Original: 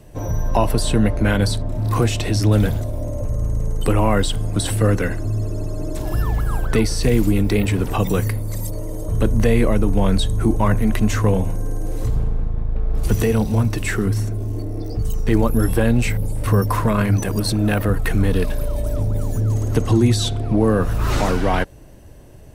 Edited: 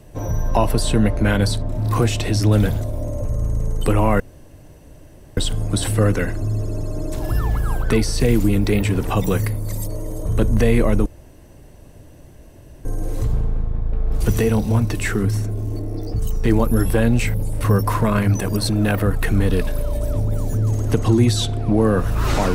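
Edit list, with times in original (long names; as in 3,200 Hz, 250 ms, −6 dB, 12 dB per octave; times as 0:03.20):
0:04.20: splice in room tone 1.17 s
0:09.89–0:11.68: fill with room tone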